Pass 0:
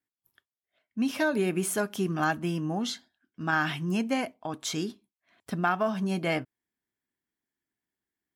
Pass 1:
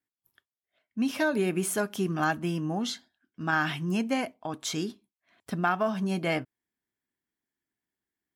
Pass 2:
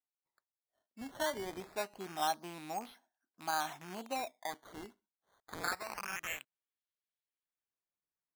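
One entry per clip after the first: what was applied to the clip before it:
no processing that can be heard
loose part that buzzes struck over −35 dBFS, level −24 dBFS; band-pass filter sweep 820 Hz → 4,000 Hz, 0:04.81–0:06.44; sample-and-hold swept by an LFO 12×, swing 100% 0.25 Hz; level −2 dB

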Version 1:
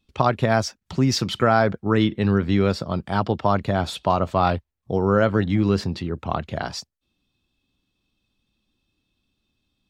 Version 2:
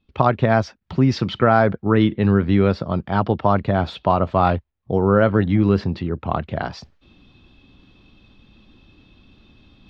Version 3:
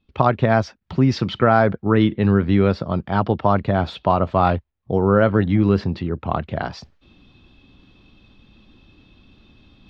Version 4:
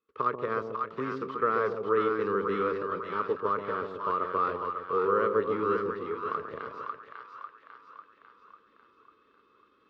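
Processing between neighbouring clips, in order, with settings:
reversed playback; upward compression, threshold −35 dBFS; reversed playback; high-frequency loss of the air 250 metres; level +3.5 dB
no processing that can be heard
spectral envelope flattened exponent 0.6; pair of resonant band-passes 730 Hz, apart 1.4 octaves; echo with a time of its own for lows and highs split 800 Hz, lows 135 ms, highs 547 ms, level −4 dB; level −2.5 dB

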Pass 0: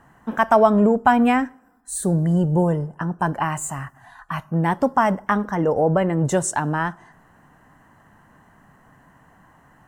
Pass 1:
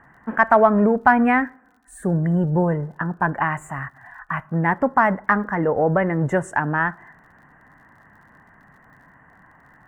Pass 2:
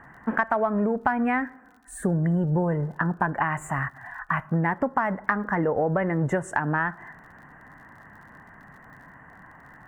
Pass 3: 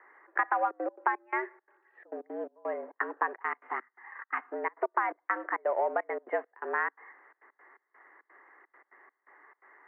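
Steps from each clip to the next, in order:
high shelf with overshoot 2,800 Hz −13.5 dB, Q 3; harmonic generator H 6 −43 dB, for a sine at −0.5 dBFS; surface crackle 55 per second −49 dBFS; level −1 dB
downward compressor 6 to 1, threshold −24 dBFS, peak gain reduction 14 dB; level +3 dB
gate pattern "xxx.xxxx.x.xx.." 170 BPM −24 dB; in parallel at −4 dB: slack as between gear wheels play −28 dBFS; on the sum: single-sideband voice off tune +110 Hz 280–2,400 Hz; level −8 dB

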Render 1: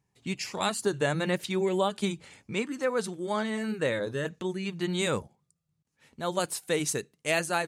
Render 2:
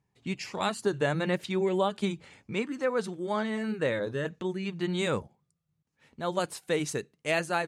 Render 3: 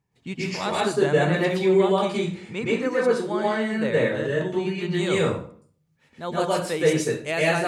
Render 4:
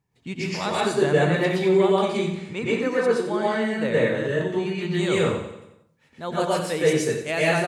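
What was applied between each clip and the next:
high-shelf EQ 6,100 Hz −11.5 dB
convolution reverb RT60 0.50 s, pre-delay 112 ms, DRR −6 dB
repeating echo 90 ms, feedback 51%, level −10.5 dB

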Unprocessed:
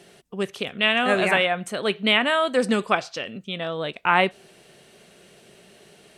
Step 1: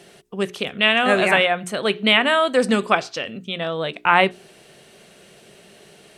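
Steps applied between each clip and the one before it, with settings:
mains-hum notches 60/120/180/240/300/360/420 Hz
level +3.5 dB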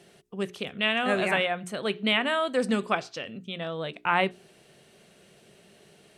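parametric band 110 Hz +4 dB 2.8 octaves
level −9 dB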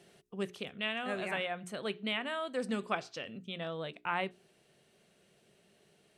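speech leveller within 3 dB 0.5 s
level −8.5 dB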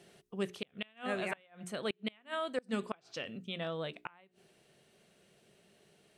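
gate with flip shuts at −24 dBFS, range −29 dB
level +1 dB

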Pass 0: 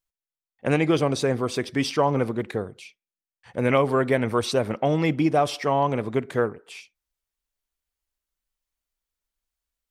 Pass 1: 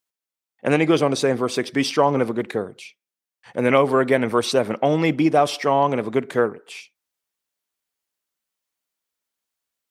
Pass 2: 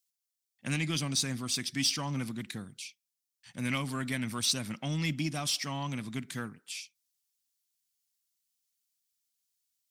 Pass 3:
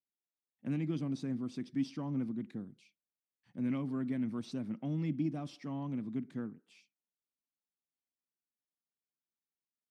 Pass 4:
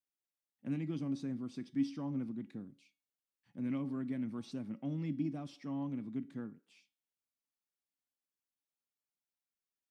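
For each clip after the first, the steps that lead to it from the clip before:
high-pass filter 170 Hz 12 dB per octave; level +4 dB
drawn EQ curve 160 Hz 0 dB, 270 Hz −6 dB, 430 Hz −24 dB, 5,200 Hz +8 dB; in parallel at −5 dB: soft clipping −24 dBFS, distortion −10 dB; on the sum: level −9 dB
resonant band-pass 280 Hz, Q 1.3; level +2 dB
tuned comb filter 280 Hz, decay 0.35 s, harmonics all, mix 60%; level +4 dB

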